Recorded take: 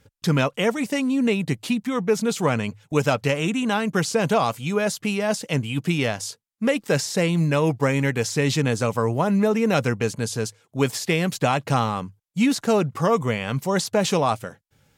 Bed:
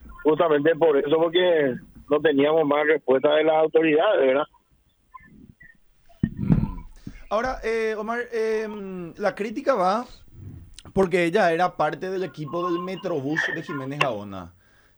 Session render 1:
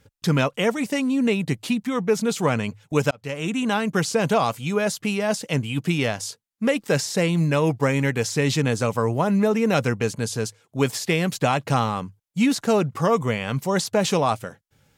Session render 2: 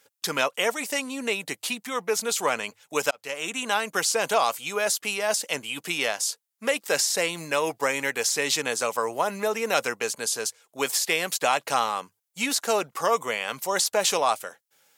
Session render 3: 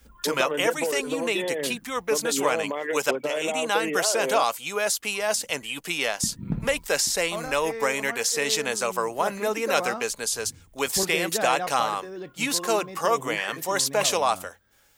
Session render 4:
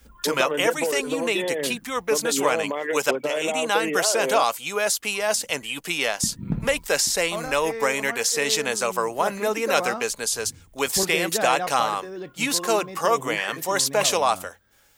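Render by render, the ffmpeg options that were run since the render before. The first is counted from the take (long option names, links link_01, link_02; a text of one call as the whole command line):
ffmpeg -i in.wav -filter_complex "[0:a]asplit=2[link_01][link_02];[link_01]atrim=end=3.11,asetpts=PTS-STARTPTS,afade=type=out:start_time=3.106:duration=0.004:curve=hsin[link_03];[link_02]atrim=start=3.11,asetpts=PTS-STARTPTS,afade=type=in:duration=0.49[link_04];[link_03][link_04]concat=n=2:v=0:a=1" out.wav
ffmpeg -i in.wav -af "highpass=560,highshelf=frequency=6300:gain=9.5" out.wav
ffmpeg -i in.wav -i bed.wav -filter_complex "[1:a]volume=-9.5dB[link_01];[0:a][link_01]amix=inputs=2:normalize=0" out.wav
ffmpeg -i in.wav -af "volume=2dB" out.wav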